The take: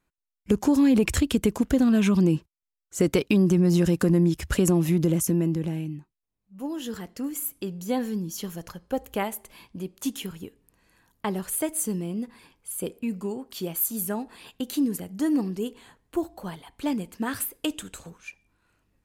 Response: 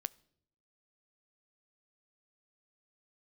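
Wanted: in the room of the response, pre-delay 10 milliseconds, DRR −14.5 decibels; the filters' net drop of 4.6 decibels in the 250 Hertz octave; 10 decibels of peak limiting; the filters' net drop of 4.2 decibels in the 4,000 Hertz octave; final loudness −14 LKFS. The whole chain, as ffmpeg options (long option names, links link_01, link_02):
-filter_complex "[0:a]equalizer=frequency=250:width_type=o:gain=-6.5,equalizer=frequency=4000:width_type=o:gain=-6,alimiter=limit=-21.5dB:level=0:latency=1,asplit=2[link_01][link_02];[1:a]atrim=start_sample=2205,adelay=10[link_03];[link_02][link_03]afir=irnorm=-1:irlink=0,volume=16dB[link_04];[link_01][link_04]amix=inputs=2:normalize=0,volume=4.5dB"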